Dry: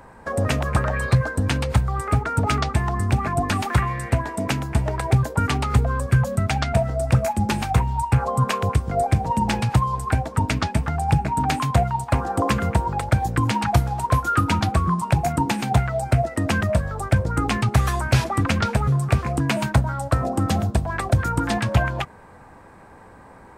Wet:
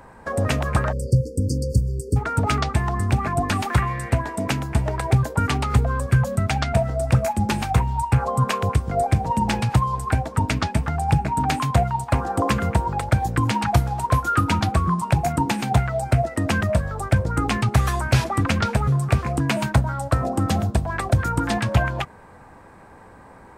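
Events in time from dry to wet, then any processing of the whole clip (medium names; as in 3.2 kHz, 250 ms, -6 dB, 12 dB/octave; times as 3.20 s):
0.92–2.16 s: spectral selection erased 580–4400 Hz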